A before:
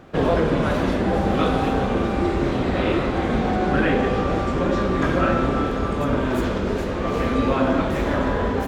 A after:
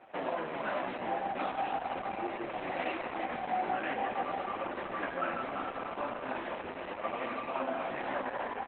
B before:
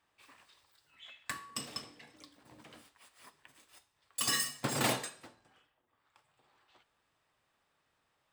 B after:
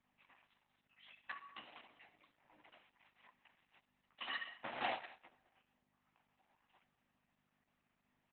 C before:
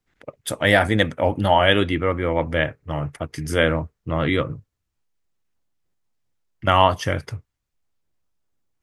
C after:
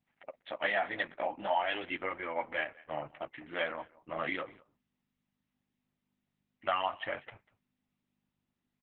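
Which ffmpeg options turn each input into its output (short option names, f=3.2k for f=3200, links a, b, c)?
-af "superequalizer=10b=0.562:11b=0.708,acompressor=threshold=-20dB:ratio=6,flanger=delay=7.9:depth=9.8:regen=-5:speed=0.41:shape=triangular,aeval=exprs='val(0)+0.00141*(sin(2*PI*50*n/s)+sin(2*PI*2*50*n/s)/2+sin(2*PI*3*50*n/s)/3+sin(2*PI*4*50*n/s)/4+sin(2*PI*5*50*n/s)/5)':c=same,highpass=430,equalizer=f=440:t=q:w=4:g=-10,equalizer=f=750:t=q:w=4:g=6,equalizer=f=1.2k:t=q:w=4:g=5,equalizer=f=1.9k:t=q:w=4:g=6,equalizer=f=2.8k:t=q:w=4:g=4,lowpass=f=3k:w=0.5412,lowpass=f=3k:w=1.3066,aecho=1:1:194:0.0841,acontrast=26,volume=-8dB" -ar 48000 -c:a libopus -b:a 8k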